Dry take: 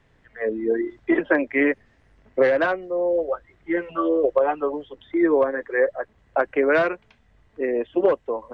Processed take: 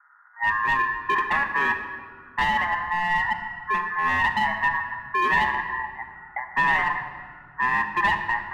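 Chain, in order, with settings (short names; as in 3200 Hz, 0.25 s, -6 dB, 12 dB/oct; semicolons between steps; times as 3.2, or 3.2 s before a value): steep low-pass 550 Hz 36 dB/oct; 5.7–6.51 compressor, threshold -32 dBFS, peak gain reduction 14.5 dB; hard clip -23 dBFS, distortion -8 dB; ring modulator 1400 Hz; reverb RT60 1.9 s, pre-delay 5 ms, DRR 4 dB; gain +6 dB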